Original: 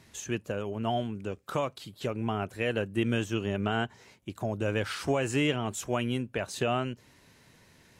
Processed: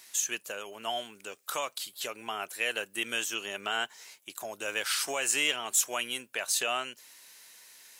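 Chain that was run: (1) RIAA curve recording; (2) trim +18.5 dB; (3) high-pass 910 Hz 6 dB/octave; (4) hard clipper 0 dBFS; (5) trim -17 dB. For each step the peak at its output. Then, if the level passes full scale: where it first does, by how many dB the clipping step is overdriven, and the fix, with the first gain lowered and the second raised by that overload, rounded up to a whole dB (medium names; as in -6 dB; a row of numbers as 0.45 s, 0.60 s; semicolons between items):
-12.0 dBFS, +6.5 dBFS, +6.5 dBFS, 0.0 dBFS, -17.0 dBFS; step 2, 6.5 dB; step 2 +11.5 dB, step 5 -10 dB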